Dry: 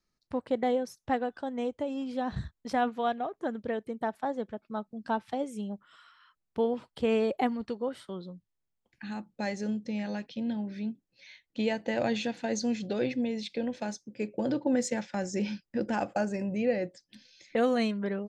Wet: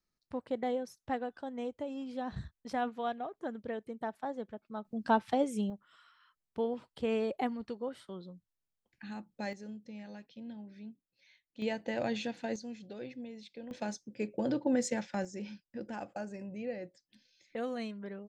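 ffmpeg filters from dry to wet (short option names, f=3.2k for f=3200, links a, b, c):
-af "asetnsamples=n=441:p=0,asendcmd='4.85 volume volume 3dB;5.7 volume volume -5.5dB;9.53 volume volume -13dB;11.62 volume volume -5dB;12.56 volume volume -14dB;13.71 volume volume -2.5dB;15.25 volume volume -11dB',volume=-6dB"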